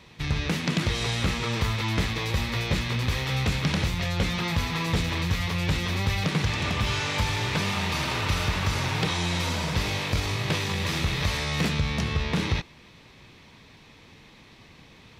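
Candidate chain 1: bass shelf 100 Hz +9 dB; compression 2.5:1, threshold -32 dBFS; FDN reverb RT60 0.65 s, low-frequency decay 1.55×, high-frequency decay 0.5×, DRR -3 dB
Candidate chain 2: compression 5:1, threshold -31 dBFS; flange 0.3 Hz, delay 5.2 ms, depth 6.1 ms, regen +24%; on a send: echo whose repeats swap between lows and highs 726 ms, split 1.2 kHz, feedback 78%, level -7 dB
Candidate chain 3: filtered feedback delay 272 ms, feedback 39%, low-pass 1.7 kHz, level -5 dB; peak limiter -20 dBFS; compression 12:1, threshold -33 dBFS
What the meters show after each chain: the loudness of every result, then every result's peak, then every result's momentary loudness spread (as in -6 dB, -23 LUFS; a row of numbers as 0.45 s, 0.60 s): -25.5 LUFS, -37.0 LUFS, -37.0 LUFS; -10.0 dBFS, -23.0 dBFS, -24.0 dBFS; 18 LU, 9 LU, 11 LU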